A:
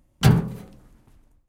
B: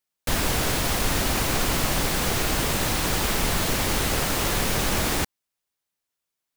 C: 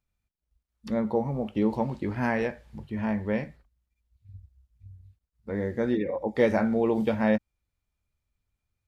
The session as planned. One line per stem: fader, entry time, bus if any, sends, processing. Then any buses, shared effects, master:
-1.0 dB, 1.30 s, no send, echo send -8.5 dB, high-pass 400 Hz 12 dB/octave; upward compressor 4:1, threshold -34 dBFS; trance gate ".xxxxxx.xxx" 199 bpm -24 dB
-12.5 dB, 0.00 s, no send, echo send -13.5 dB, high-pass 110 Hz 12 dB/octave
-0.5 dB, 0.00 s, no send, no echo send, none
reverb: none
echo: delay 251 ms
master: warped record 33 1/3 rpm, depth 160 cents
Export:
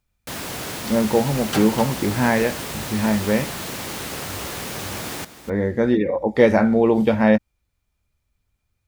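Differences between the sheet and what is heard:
stem B -12.5 dB -> -5.5 dB; stem C -0.5 dB -> +8.0 dB; master: missing warped record 33 1/3 rpm, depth 160 cents

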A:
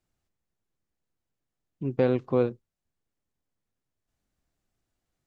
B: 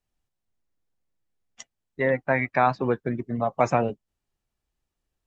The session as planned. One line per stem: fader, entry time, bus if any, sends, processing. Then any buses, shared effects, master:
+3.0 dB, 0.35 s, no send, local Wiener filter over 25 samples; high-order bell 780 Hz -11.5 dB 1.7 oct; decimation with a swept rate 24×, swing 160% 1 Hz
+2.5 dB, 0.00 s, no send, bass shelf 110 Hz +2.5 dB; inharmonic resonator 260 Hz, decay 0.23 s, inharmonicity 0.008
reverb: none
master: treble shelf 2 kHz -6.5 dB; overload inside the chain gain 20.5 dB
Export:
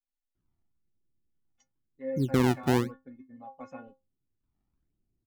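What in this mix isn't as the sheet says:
stem B +2.5 dB -> -6.5 dB; master: missing overload inside the chain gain 20.5 dB

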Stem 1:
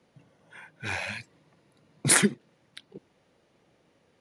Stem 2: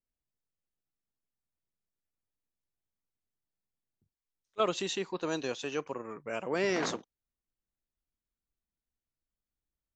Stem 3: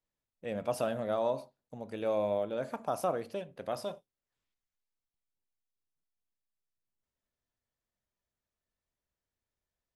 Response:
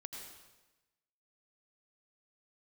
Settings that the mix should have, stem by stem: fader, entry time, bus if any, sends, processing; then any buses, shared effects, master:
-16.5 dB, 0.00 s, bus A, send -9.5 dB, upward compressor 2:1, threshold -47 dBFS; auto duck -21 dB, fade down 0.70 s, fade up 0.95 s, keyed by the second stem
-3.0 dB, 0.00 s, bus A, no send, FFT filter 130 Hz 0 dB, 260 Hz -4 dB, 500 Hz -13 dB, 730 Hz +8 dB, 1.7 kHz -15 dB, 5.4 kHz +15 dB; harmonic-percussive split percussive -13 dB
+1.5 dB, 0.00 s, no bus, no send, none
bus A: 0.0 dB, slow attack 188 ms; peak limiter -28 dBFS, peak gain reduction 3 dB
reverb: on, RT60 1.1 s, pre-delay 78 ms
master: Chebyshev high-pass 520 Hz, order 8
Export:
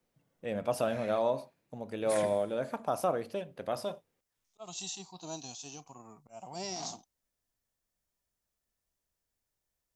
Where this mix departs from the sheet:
stem 1: missing upward compressor 2:1, threshold -47 dBFS; master: missing Chebyshev high-pass 520 Hz, order 8

